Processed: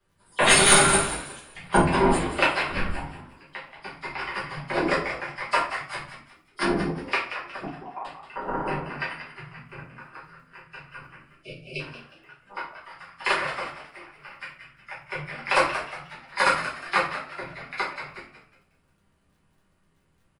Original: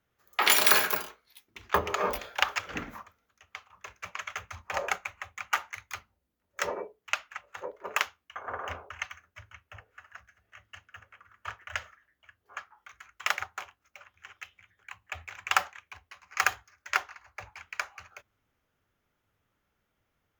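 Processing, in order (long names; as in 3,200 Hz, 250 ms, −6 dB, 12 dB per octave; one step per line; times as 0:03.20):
hearing-aid frequency compression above 3,200 Hz 1.5 to 1
parametric band 150 Hz +8.5 dB 0.31 octaves
frequency shifter −230 Hz
0:11.15–0:11.80: time-frequency box erased 650–2,200 Hz
in parallel at −9.5 dB: soft clipping −17 dBFS, distortion −12 dB
on the sum: surface crackle 16 per second −56 dBFS
0:07.65–0:08.05: formant resonators in series a
echo with shifted repeats 181 ms, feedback 33%, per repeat +88 Hz, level −10.5 dB
rectangular room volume 40 cubic metres, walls mixed, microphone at 1.3 metres
level −3 dB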